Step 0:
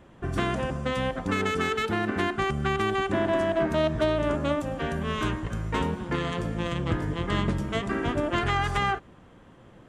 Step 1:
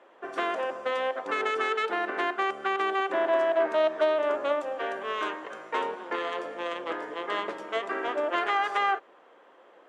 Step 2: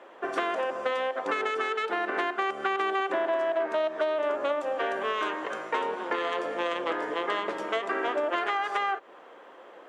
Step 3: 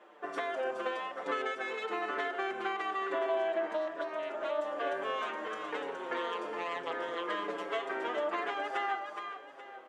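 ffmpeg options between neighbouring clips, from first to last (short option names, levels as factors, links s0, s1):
-af "highpass=f=430:w=0.5412,highpass=f=430:w=1.3066,aemphasis=mode=reproduction:type=75fm,volume=1.19"
-af "acompressor=threshold=0.0251:ratio=5,volume=2.11"
-filter_complex "[0:a]aecho=1:1:418|836|1254|1672:0.501|0.175|0.0614|0.0215,asplit=2[s0][s1];[s1]adelay=6.1,afreqshift=-1.1[s2];[s0][s2]amix=inputs=2:normalize=1,volume=0.631"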